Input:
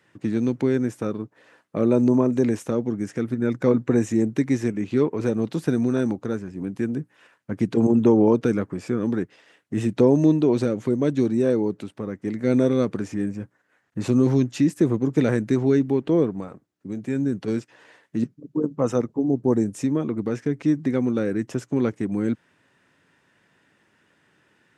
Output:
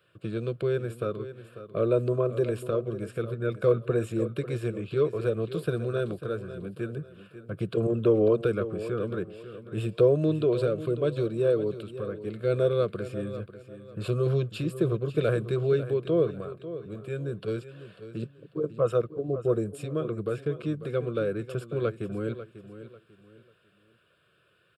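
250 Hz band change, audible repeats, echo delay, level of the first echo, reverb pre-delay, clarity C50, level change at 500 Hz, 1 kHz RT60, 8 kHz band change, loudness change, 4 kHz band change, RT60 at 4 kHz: -11.5 dB, 3, 544 ms, -13.0 dB, no reverb, no reverb, -2.0 dB, no reverb, no reading, -6.0 dB, -1.5 dB, no reverb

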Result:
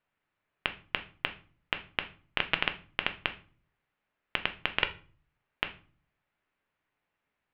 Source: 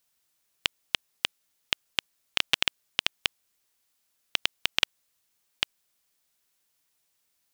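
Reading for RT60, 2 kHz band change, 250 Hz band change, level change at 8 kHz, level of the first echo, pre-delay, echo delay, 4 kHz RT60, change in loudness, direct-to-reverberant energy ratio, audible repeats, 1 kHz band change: 0.40 s, 0.0 dB, +3.0 dB, under -30 dB, no echo, 5 ms, no echo, 0.30 s, -4.0 dB, 7.5 dB, no echo, +2.5 dB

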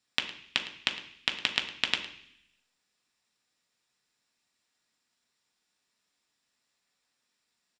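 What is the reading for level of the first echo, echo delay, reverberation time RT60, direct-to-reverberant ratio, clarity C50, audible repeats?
-16.5 dB, 109 ms, 0.65 s, 2.5 dB, 9.5 dB, 1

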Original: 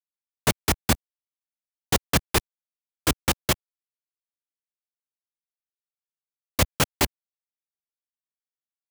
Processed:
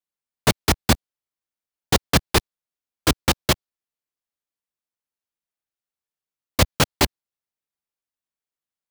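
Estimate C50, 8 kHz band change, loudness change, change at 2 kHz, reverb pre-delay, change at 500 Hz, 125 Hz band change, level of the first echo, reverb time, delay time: no reverb, +1.5 dB, +3.5 dB, +3.5 dB, no reverb, +4.5 dB, +4.5 dB, no echo, no reverb, no echo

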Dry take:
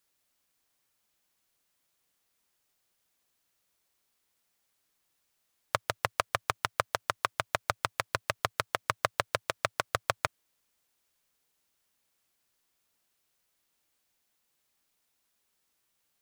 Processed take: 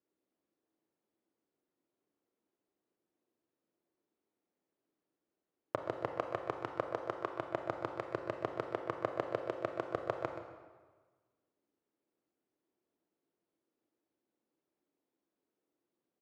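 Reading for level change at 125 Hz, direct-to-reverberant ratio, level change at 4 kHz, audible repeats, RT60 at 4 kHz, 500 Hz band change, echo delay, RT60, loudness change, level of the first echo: -7.0 dB, 4.5 dB, -19.5 dB, 1, 1.1 s, 0.0 dB, 127 ms, 1.4 s, -7.0 dB, -11.5 dB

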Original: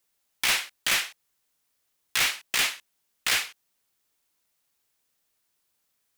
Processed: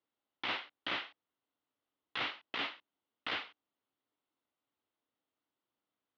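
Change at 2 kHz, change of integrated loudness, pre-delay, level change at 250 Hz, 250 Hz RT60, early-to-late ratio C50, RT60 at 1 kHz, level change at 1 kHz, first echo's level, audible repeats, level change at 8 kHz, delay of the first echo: -12.5 dB, -13.5 dB, no reverb, -1.5 dB, no reverb, no reverb, no reverb, -6.5 dB, no echo, no echo, under -35 dB, no echo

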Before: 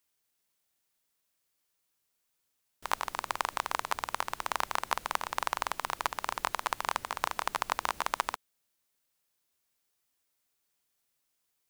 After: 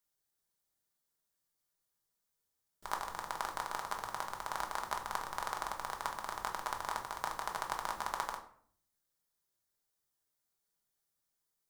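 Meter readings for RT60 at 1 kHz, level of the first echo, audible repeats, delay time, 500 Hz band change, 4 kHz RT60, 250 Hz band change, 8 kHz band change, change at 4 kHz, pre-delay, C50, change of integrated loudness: 0.55 s, no echo, no echo, no echo, -5.0 dB, 0.35 s, -4.0 dB, -5.5 dB, -8.0 dB, 5 ms, 10.0 dB, -5.5 dB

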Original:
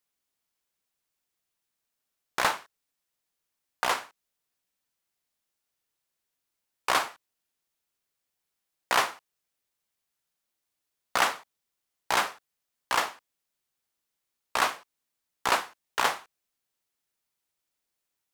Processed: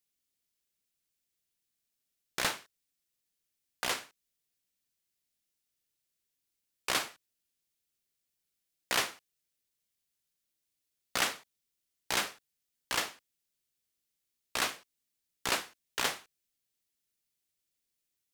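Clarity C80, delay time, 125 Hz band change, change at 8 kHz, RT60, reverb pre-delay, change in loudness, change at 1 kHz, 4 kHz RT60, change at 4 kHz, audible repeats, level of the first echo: no reverb, no echo, -0.5 dB, -0.5 dB, no reverb, no reverb, -5.0 dB, -10.5 dB, no reverb, -1.5 dB, no echo, no echo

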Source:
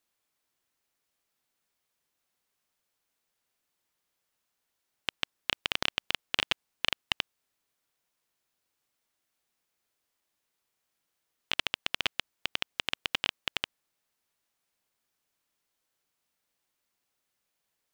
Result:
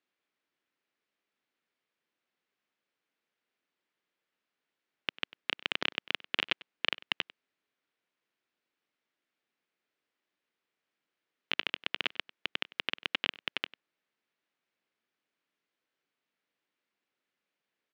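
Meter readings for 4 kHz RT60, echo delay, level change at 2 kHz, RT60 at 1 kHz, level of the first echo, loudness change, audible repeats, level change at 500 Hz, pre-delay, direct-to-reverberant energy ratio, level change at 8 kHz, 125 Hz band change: no reverb, 97 ms, -0.5 dB, no reverb, -20.5 dB, -2.0 dB, 1, -1.0 dB, no reverb, no reverb, under -10 dB, -6.5 dB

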